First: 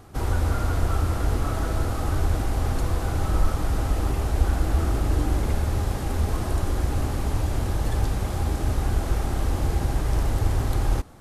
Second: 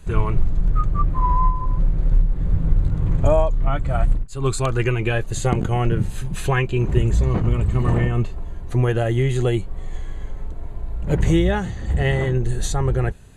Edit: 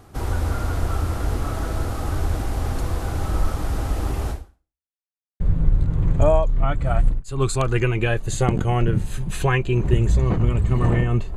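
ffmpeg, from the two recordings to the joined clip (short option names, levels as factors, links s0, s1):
-filter_complex "[0:a]apad=whole_dur=11.36,atrim=end=11.36,asplit=2[s0][s1];[s0]atrim=end=4.9,asetpts=PTS-STARTPTS,afade=t=out:st=4.31:d=0.59:c=exp[s2];[s1]atrim=start=4.9:end=5.4,asetpts=PTS-STARTPTS,volume=0[s3];[1:a]atrim=start=2.44:end=8.4,asetpts=PTS-STARTPTS,afade=t=in:d=0.004:c=hsin[s4];[s2][s3][s4]concat=n=3:v=0:a=1"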